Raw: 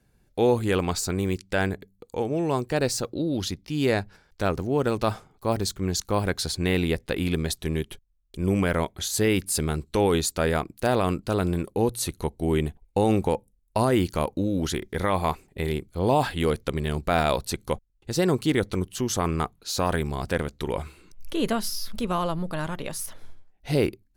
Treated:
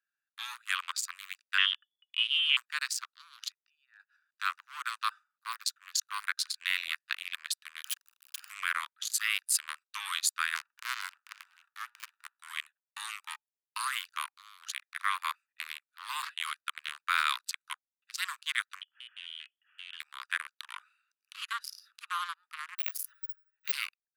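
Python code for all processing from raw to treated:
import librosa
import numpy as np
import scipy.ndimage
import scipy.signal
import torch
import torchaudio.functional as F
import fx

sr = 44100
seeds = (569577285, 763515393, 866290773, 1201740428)

y = fx.chain(x, sr, fx.freq_invert(carrier_hz=3400),
    fx.air_absorb(metres=100.0), at=(1.58, 2.57))
y = fx.chain(y, sr, fx.envelope_sharpen(power=1.5),
    fx.peak_eq(hz=1300.0, db=4.0, octaves=0.8),
    fx.level_steps(step_db=18), at=(3.52, 4.0))
y = fx.chain(y, sr, fx.clip_1bit(),
    fx.high_shelf(hz=3300.0, db=7.0), at=(7.84, 8.5))
y = fx.chain(y, sr, fx.high_shelf(hz=4000.0, db=5.5),
    fx.hum_notches(base_hz=60, count=7),
    fx.running_max(window=65), at=(10.55, 12.39))
y = fx.chain(y, sr, fx.low_shelf(hz=98.0, db=-7.0),
    fx.tube_stage(drive_db=30.0, bias=0.4),
    fx.freq_invert(carrier_hz=3300), at=(18.81, 20.0))
y = fx.chain(y, sr, fx.resample_bad(factor=2, down='none', up='zero_stuff'),
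    fx.band_squash(depth_pct=70), at=(22.78, 23.72))
y = fx.wiener(y, sr, points=41)
y = scipy.signal.sosfilt(scipy.signal.butter(12, 1100.0, 'highpass', fs=sr, output='sos'), y)
y = F.gain(torch.from_numpy(y), 2.0).numpy()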